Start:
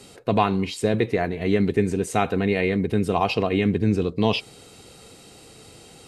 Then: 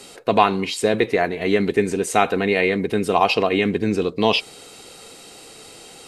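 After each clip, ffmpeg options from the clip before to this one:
-af "equalizer=f=85:w=0.46:g=-14,volume=6.5dB"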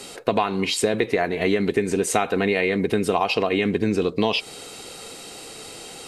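-af "acompressor=threshold=-20dB:ratio=10,volume=3.5dB"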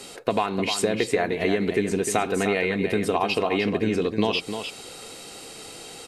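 -af "aecho=1:1:303:0.398,volume=-2.5dB"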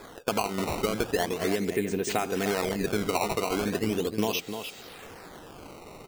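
-af "acrusher=samples=15:mix=1:aa=0.000001:lfo=1:lforange=24:lforate=0.38,volume=-4.5dB"

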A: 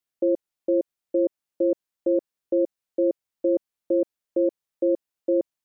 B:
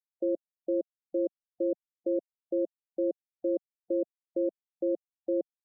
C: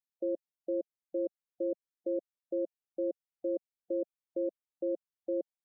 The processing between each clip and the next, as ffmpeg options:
-af "highpass=f=86:w=0.5412,highpass=f=86:w=1.3066,afftfilt=real='re*gte(hypot(re,im),0.02)':imag='im*gte(hypot(re,im),0.02)':win_size=1024:overlap=0.75,volume=-7dB"
-af "equalizer=f=560:w=2.7:g=2.5,volume=-5.5dB"

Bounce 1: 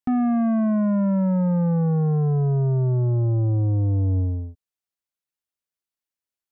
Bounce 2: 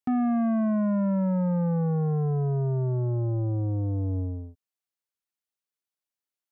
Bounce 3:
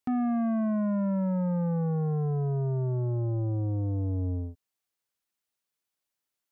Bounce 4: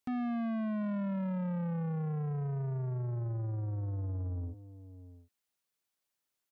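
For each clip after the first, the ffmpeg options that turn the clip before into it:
-af "highpass=f=140:p=1,volume=-2.5dB"
-af "alimiter=level_in=3.5dB:limit=-24dB:level=0:latency=1:release=208,volume=-3.5dB,volume=5dB"
-af "aecho=1:1:736:0.0841,asoftclip=type=tanh:threshold=-32dB"

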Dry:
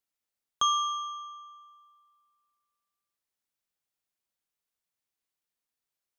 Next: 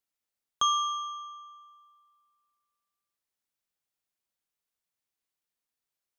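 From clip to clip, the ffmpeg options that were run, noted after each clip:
-af anull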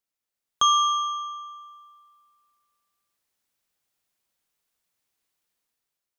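-af "dynaudnorm=f=140:g=9:m=9dB"

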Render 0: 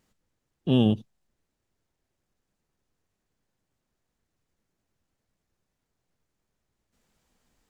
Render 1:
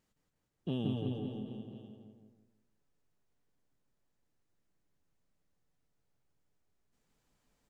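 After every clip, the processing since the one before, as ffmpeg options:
-filter_complex "[0:a]asplit=2[a][b];[b]adelay=163,lowpass=f=1.4k:p=1,volume=-3dB,asplit=2[c][d];[d]adelay=163,lowpass=f=1.4k:p=1,volume=0.37,asplit=2[e][f];[f]adelay=163,lowpass=f=1.4k:p=1,volume=0.37,asplit=2[g][h];[h]adelay=163,lowpass=f=1.4k:p=1,volume=0.37,asplit=2[i][j];[j]adelay=163,lowpass=f=1.4k:p=1,volume=0.37[k];[c][e][g][i][k]amix=inputs=5:normalize=0[l];[a][l]amix=inputs=2:normalize=0,acompressor=threshold=-24dB:ratio=5,asplit=2[m][n];[n]aecho=0:1:170|357|562.7|789|1038:0.631|0.398|0.251|0.158|0.1[o];[m][o]amix=inputs=2:normalize=0,volume=-8dB"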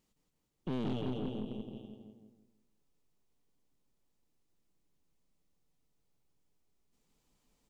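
-af "equalizer=f=100:t=o:w=0.67:g=-7,equalizer=f=630:t=o:w=0.67:g=-4,equalizer=f=1.6k:t=o:w=0.67:g=-8,aeval=exprs='(tanh(89.1*val(0)+0.75)-tanh(0.75))/89.1':c=same,volume=7dB"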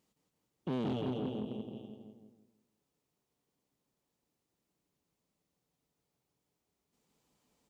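-af "highpass=76,equalizer=f=650:t=o:w=2:g=3"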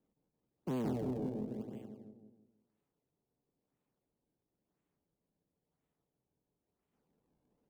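-filter_complex "[0:a]lowpass=3.5k,acrossover=split=110|350|910[a][b][c][d];[d]acrusher=samples=39:mix=1:aa=0.000001:lfo=1:lforange=62.4:lforate=0.98[e];[a][b][c][e]amix=inputs=4:normalize=0,volume=-1dB"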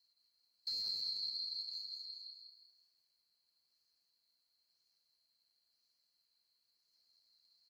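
-filter_complex "[0:a]afftfilt=real='real(if(lt(b,736),b+184*(1-2*mod(floor(b/184),2)),b),0)':imag='imag(if(lt(b,736),b+184*(1-2*mod(floor(b/184),2)),b),0)':win_size=2048:overlap=0.75,asplit=5[a][b][c][d][e];[b]adelay=198,afreqshift=74,volume=-5.5dB[f];[c]adelay=396,afreqshift=148,volume=-15.7dB[g];[d]adelay=594,afreqshift=222,volume=-25.8dB[h];[e]adelay=792,afreqshift=296,volume=-36dB[i];[a][f][g][h][i]amix=inputs=5:normalize=0,acrossover=split=370[j][k];[k]acompressor=threshold=-51dB:ratio=2[l];[j][l]amix=inputs=2:normalize=0,volume=5dB"

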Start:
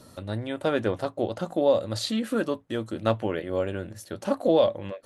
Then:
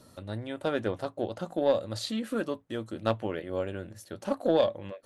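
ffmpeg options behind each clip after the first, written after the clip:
-af "aeval=exprs='0.355*(cos(1*acos(clip(val(0)/0.355,-1,1)))-cos(1*PI/2))+0.0355*(cos(3*acos(clip(val(0)/0.355,-1,1)))-cos(3*PI/2))':c=same,volume=-2dB"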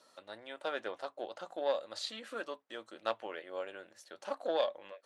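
-af "highpass=650,lowpass=7.1k,volume=-3dB"

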